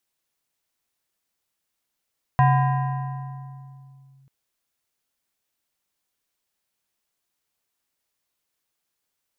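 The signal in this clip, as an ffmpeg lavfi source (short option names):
-f lavfi -i "aevalsrc='0.251*pow(10,-3*t/2.77)*sin(2*PI*135*t+0.99*clip(1-t/1.88,0,1)*sin(2*PI*6.47*135*t))':d=1.89:s=44100"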